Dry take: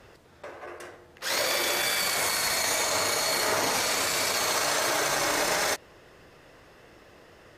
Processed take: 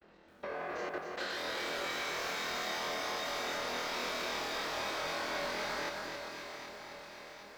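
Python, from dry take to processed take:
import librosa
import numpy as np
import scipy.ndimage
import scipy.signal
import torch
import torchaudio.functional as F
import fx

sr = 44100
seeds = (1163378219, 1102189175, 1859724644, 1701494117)

p1 = fx.freq_compress(x, sr, knee_hz=2700.0, ratio=1.5)
p2 = fx.granulator(p1, sr, seeds[0], grain_ms=100.0, per_s=20.0, spray_ms=100.0, spread_st=0)
p3 = fx.low_shelf_res(p2, sr, hz=150.0, db=-6.5, q=3.0)
p4 = 10.0 ** (-30.0 / 20.0) * np.tanh(p3 / 10.0 ** (-30.0 / 20.0))
p5 = fx.peak_eq(p4, sr, hz=8400.0, db=-10.5, octaves=1.0)
p6 = p5 + fx.room_flutter(p5, sr, wall_m=4.2, rt60_s=0.45, dry=0)
p7 = fx.level_steps(p6, sr, step_db=22)
p8 = fx.echo_alternate(p7, sr, ms=384, hz=1500.0, feedback_pct=77, wet_db=-7.5)
p9 = fx.echo_crushed(p8, sr, ms=267, feedback_pct=55, bits=12, wet_db=-5.0)
y = p9 * librosa.db_to_amplitude(4.5)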